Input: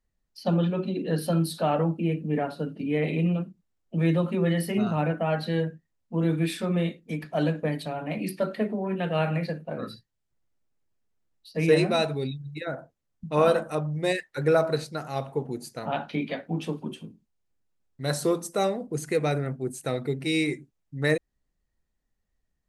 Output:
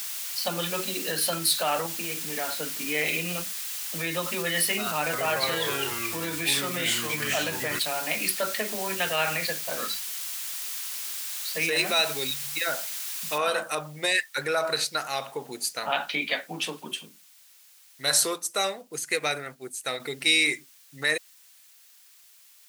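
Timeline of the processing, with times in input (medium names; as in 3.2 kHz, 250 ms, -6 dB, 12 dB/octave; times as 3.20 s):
1.86–2.54 s: compression, threshold -27 dBFS
5.02–7.79 s: ever faster or slower copies 111 ms, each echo -3 st, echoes 3
13.38 s: noise floor step -48 dB -69 dB
18.28–20.00 s: upward expansion, over -39 dBFS
whole clip: peak limiter -18.5 dBFS; high-pass 450 Hz 6 dB/octave; tilt shelf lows -9 dB; trim +5.5 dB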